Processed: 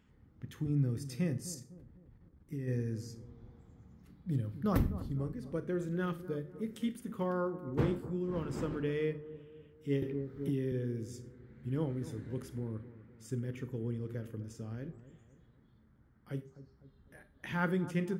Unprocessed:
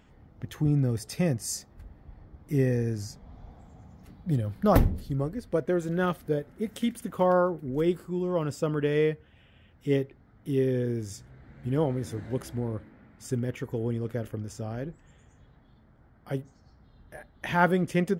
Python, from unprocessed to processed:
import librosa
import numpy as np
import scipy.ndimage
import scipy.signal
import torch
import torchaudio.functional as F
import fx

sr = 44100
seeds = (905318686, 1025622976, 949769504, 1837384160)

y = fx.dmg_wind(x, sr, seeds[0], corner_hz=470.0, level_db=-32.0, at=(7.77, 8.83), fade=0.02)
y = fx.highpass(y, sr, hz=68.0, slope=6)
y = fx.peak_eq(y, sr, hz=680.0, db=-13.0, octaves=0.88)
y = fx.hum_notches(y, sr, base_hz=50, count=8)
y = fx.level_steps(y, sr, step_db=11, at=(1.51, 2.67), fade=0.02)
y = fx.tilt_shelf(y, sr, db=3.0, hz=1400.0)
y = fx.echo_bbd(y, sr, ms=252, stages=2048, feedback_pct=46, wet_db=-14.5)
y = fx.rev_schroeder(y, sr, rt60_s=0.34, comb_ms=28, drr_db=12.5)
y = fx.band_squash(y, sr, depth_pct=100, at=(10.02, 10.72))
y = F.gain(torch.from_numpy(y), -7.5).numpy()